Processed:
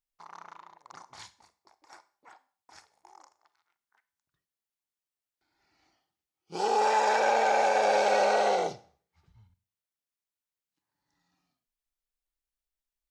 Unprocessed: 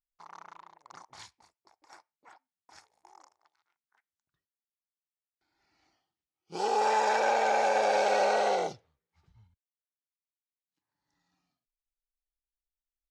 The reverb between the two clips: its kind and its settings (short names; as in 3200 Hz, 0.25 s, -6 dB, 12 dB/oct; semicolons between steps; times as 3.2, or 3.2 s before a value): Schroeder reverb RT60 0.45 s, combs from 31 ms, DRR 15 dB; gain +1.5 dB